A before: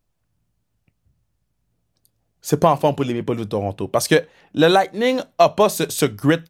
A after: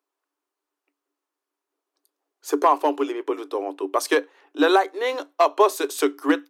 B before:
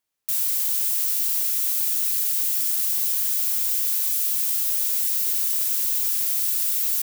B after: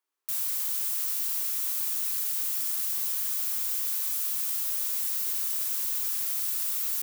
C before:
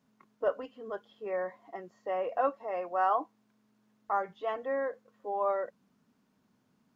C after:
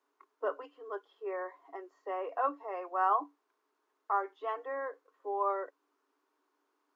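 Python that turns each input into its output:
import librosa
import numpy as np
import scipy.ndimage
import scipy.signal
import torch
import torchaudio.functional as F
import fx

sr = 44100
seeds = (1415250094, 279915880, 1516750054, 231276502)

y = np.clip(x, -10.0 ** (-5.5 / 20.0), 10.0 ** (-5.5 / 20.0))
y = scipy.signal.sosfilt(scipy.signal.cheby1(6, 9, 280.0, 'highpass', fs=sr, output='sos'), y)
y = y * librosa.db_to_amplitude(2.5)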